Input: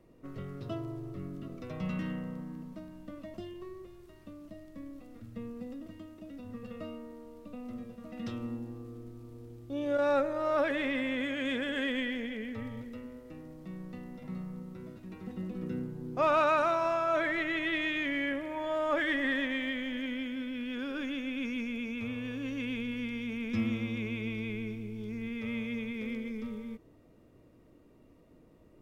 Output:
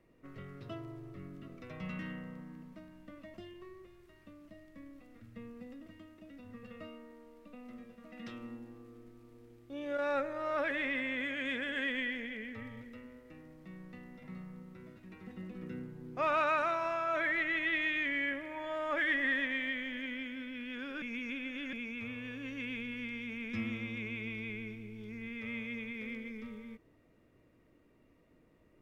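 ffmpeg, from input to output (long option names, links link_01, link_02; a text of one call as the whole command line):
ffmpeg -i in.wav -filter_complex "[0:a]asettb=1/sr,asplit=3[link_01][link_02][link_03];[link_01]atrim=end=6.874[link_04];[link_02]atrim=start=6.87:end=10.15,asetpts=PTS-STARTPTS,afade=type=in:duration=0.004:curve=qsin,afade=type=out:start_time=3.276:duration=0.004:curve=qsin,equalizer=frequency=87:width=1.5:gain=-12[link_05];[link_03]atrim=start=10.146[link_06];[link_04][link_05]acrossfade=duration=0.004:curve1=hsin:curve2=qsin[link_07];[link_07][link_06]acrossfade=duration=0.004:curve1=qsin:curve2=hsin,asplit=3[link_08][link_09][link_10];[link_08]atrim=end=21.022[link_11];[link_09]atrim=start=21.018:end=21.732,asetpts=PTS-STARTPTS,areverse[link_12];[link_10]atrim=start=21.728[link_13];[link_11][link_12]acrossfade=duration=0.004:curve1=hsin:curve2=hsin[link_14];[link_14][link_13]acrossfade=duration=0.004:curve1=hsin:curve2=hsin,equalizer=frequency=2000:width_type=o:width=1.2:gain=8.5,volume=-7dB" out.wav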